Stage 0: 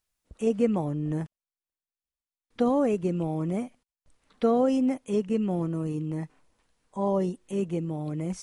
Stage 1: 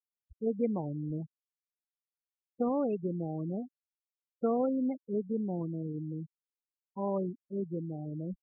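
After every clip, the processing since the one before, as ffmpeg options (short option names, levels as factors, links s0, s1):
-af "afftfilt=real='re*gte(hypot(re,im),0.0501)':imag='im*gte(hypot(re,im),0.0501)':win_size=1024:overlap=0.75,volume=0.473"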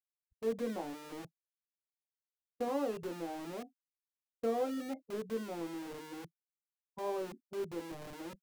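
-filter_complex "[0:a]agate=range=0.0224:threshold=0.00891:ratio=3:detection=peak,acrossover=split=240[s0][s1];[s0]aeval=exprs='(mod(119*val(0)+1,2)-1)/119':c=same[s2];[s1]aecho=1:1:18|48:0.708|0.158[s3];[s2][s3]amix=inputs=2:normalize=0,volume=0.631"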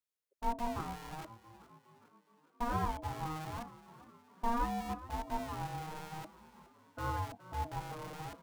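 -filter_complex "[0:a]aeval=exprs='if(lt(val(0),0),0.708*val(0),val(0))':c=same,aeval=exprs='val(0)*sin(2*PI*470*n/s)':c=same,asplit=6[s0][s1][s2][s3][s4][s5];[s1]adelay=417,afreqshift=47,volume=0.141[s6];[s2]adelay=834,afreqshift=94,volume=0.075[s7];[s3]adelay=1251,afreqshift=141,volume=0.0398[s8];[s4]adelay=1668,afreqshift=188,volume=0.0211[s9];[s5]adelay=2085,afreqshift=235,volume=0.0111[s10];[s0][s6][s7][s8][s9][s10]amix=inputs=6:normalize=0,volume=1.78"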